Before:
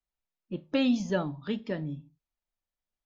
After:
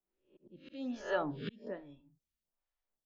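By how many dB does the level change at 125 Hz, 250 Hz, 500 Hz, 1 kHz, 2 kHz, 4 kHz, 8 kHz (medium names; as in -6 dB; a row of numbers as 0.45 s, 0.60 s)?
-12.5 dB, -13.0 dB, -6.0 dB, -1.5 dB, -4.5 dB, -12.5 dB, no reading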